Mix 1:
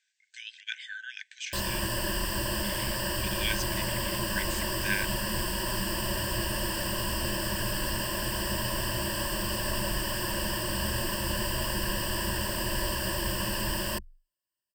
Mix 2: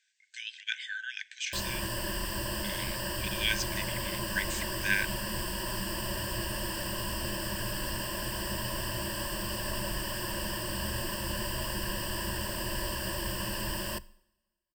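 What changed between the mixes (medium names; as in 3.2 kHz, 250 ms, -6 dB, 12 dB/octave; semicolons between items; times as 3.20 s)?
background -6.0 dB; reverb: on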